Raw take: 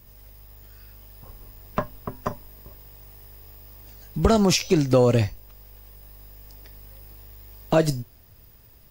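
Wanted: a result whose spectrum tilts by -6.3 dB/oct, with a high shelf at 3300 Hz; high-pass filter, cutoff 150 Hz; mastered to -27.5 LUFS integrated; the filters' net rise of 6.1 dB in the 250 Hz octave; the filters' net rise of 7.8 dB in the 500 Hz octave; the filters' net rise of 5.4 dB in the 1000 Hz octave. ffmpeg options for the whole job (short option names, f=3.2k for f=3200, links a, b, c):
-af "highpass=150,equalizer=f=250:t=o:g=7,equalizer=f=500:t=o:g=6.5,equalizer=f=1k:t=o:g=5,highshelf=f=3.3k:g=-8.5,volume=-10.5dB"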